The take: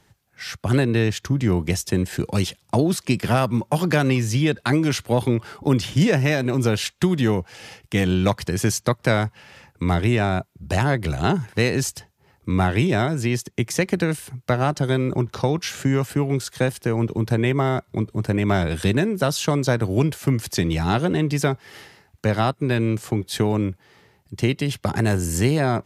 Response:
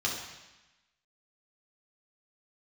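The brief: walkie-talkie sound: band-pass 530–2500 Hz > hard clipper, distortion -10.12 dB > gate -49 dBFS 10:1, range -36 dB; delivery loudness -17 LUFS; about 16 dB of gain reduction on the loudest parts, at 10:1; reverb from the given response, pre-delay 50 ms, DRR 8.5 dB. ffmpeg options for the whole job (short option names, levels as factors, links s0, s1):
-filter_complex "[0:a]acompressor=threshold=0.0282:ratio=10,asplit=2[s0][s1];[1:a]atrim=start_sample=2205,adelay=50[s2];[s1][s2]afir=irnorm=-1:irlink=0,volume=0.158[s3];[s0][s3]amix=inputs=2:normalize=0,highpass=530,lowpass=2500,asoftclip=type=hard:threshold=0.0158,agate=range=0.0158:threshold=0.00355:ratio=10,volume=23.7"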